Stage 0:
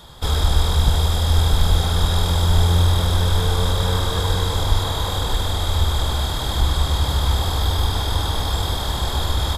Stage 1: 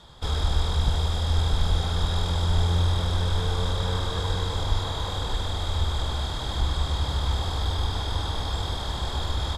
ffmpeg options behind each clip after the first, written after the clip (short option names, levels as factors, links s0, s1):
-af "lowpass=7200,volume=0.473"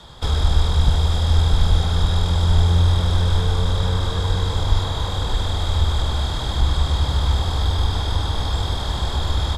-filter_complex "[0:a]acrossover=split=230[s0][s1];[s1]acompressor=threshold=0.0224:ratio=6[s2];[s0][s2]amix=inputs=2:normalize=0,volume=2.24"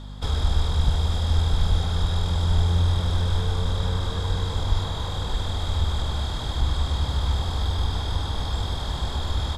-af "aeval=exprs='val(0)+0.0282*(sin(2*PI*50*n/s)+sin(2*PI*2*50*n/s)/2+sin(2*PI*3*50*n/s)/3+sin(2*PI*4*50*n/s)/4+sin(2*PI*5*50*n/s)/5)':c=same,volume=0.562"